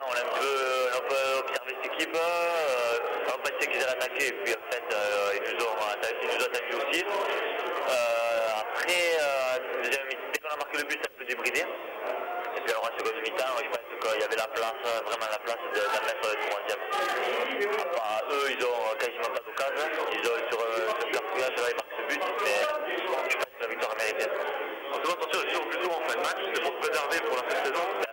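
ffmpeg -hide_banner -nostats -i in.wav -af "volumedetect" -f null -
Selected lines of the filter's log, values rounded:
mean_volume: -29.6 dB
max_volume: -11.7 dB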